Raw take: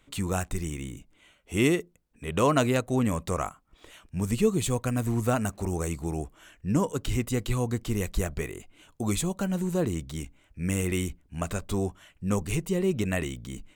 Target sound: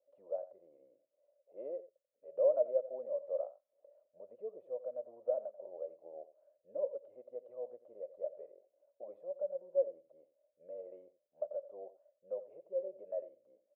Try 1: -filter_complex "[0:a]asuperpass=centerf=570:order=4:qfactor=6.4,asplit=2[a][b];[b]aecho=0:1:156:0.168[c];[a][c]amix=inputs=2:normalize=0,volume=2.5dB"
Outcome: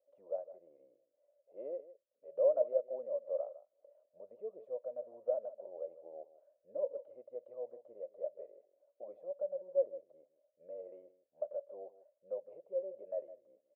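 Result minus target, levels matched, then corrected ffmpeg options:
echo 68 ms late
-filter_complex "[0:a]asuperpass=centerf=570:order=4:qfactor=6.4,asplit=2[a][b];[b]aecho=0:1:88:0.168[c];[a][c]amix=inputs=2:normalize=0,volume=2.5dB"

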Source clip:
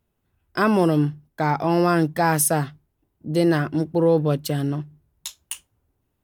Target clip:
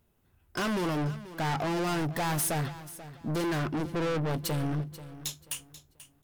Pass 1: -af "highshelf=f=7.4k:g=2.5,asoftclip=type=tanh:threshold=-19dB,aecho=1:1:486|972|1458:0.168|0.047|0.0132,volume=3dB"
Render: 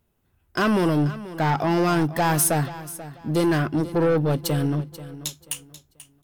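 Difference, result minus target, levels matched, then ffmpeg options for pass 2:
soft clip: distortion -7 dB
-af "highshelf=f=7.4k:g=2.5,asoftclip=type=tanh:threshold=-31dB,aecho=1:1:486|972|1458:0.168|0.047|0.0132,volume=3dB"

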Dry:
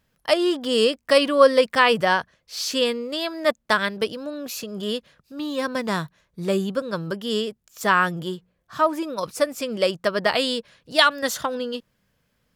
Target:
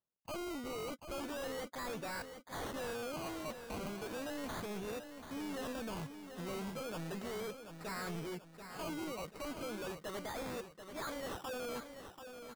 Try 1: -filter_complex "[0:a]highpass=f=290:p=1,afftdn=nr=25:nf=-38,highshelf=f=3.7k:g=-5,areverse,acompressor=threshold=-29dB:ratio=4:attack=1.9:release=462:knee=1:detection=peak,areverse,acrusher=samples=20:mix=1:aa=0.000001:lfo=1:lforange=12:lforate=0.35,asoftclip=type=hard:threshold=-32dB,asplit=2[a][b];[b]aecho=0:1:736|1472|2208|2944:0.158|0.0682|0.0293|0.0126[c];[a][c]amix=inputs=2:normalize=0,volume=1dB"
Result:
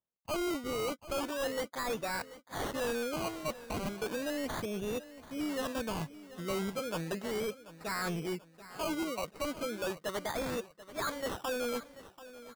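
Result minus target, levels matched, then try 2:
echo-to-direct -7 dB; hard clip: distortion -6 dB
-filter_complex "[0:a]highpass=f=290:p=1,afftdn=nr=25:nf=-38,highshelf=f=3.7k:g=-5,areverse,acompressor=threshold=-29dB:ratio=4:attack=1.9:release=462:knee=1:detection=peak,areverse,acrusher=samples=20:mix=1:aa=0.000001:lfo=1:lforange=12:lforate=0.35,asoftclip=type=hard:threshold=-41.5dB,asplit=2[a][b];[b]aecho=0:1:736|1472|2208|2944|3680:0.355|0.153|0.0656|0.0282|0.0121[c];[a][c]amix=inputs=2:normalize=0,volume=1dB"

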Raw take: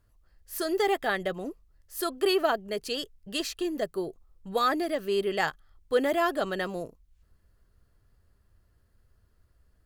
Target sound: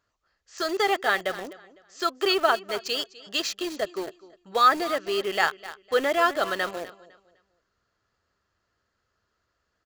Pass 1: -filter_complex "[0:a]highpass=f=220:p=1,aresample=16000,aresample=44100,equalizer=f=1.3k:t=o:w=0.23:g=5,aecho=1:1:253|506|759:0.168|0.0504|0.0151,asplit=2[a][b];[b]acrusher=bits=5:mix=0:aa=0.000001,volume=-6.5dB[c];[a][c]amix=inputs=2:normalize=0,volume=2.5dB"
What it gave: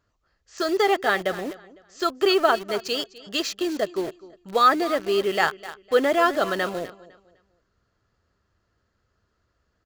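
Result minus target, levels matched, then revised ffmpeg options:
250 Hz band +4.0 dB
-filter_complex "[0:a]highpass=f=720:p=1,aresample=16000,aresample=44100,equalizer=f=1.3k:t=o:w=0.23:g=5,aecho=1:1:253|506|759:0.168|0.0504|0.0151,asplit=2[a][b];[b]acrusher=bits=5:mix=0:aa=0.000001,volume=-6.5dB[c];[a][c]amix=inputs=2:normalize=0,volume=2.5dB"

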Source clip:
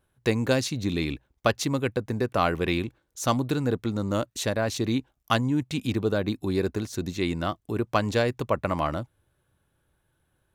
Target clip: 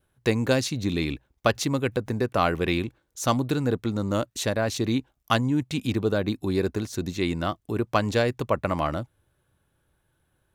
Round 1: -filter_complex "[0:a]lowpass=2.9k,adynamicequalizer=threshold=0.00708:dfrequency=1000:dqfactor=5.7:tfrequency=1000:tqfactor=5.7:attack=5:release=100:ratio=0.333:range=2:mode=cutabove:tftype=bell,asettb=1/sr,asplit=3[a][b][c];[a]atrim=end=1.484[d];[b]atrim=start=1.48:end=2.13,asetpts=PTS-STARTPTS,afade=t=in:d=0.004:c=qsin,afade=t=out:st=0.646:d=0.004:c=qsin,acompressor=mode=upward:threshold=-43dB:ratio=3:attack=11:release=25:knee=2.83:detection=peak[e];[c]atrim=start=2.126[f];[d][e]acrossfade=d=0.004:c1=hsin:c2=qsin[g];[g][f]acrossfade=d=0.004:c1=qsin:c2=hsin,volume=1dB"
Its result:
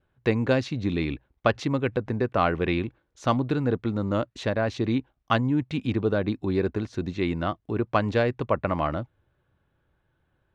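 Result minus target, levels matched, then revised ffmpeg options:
4000 Hz band -5.0 dB
-filter_complex "[0:a]adynamicequalizer=threshold=0.00708:dfrequency=1000:dqfactor=5.7:tfrequency=1000:tqfactor=5.7:attack=5:release=100:ratio=0.333:range=2:mode=cutabove:tftype=bell,asettb=1/sr,asplit=3[a][b][c];[a]atrim=end=1.484[d];[b]atrim=start=1.48:end=2.13,asetpts=PTS-STARTPTS,afade=t=in:d=0.004:c=qsin,afade=t=out:st=0.646:d=0.004:c=qsin,acompressor=mode=upward:threshold=-43dB:ratio=3:attack=11:release=25:knee=2.83:detection=peak[e];[c]atrim=start=2.126[f];[d][e]acrossfade=d=0.004:c1=hsin:c2=qsin[g];[g][f]acrossfade=d=0.004:c1=qsin:c2=hsin,volume=1dB"

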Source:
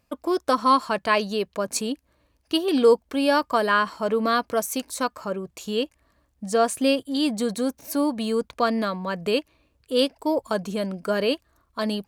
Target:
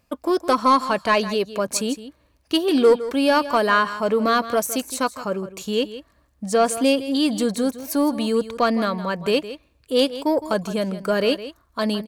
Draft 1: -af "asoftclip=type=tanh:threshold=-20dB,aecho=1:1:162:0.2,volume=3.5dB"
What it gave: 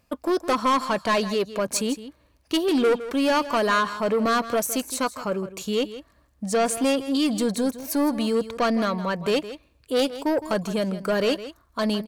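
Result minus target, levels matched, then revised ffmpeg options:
soft clip: distortion +11 dB
-af "asoftclip=type=tanh:threshold=-10.5dB,aecho=1:1:162:0.2,volume=3.5dB"

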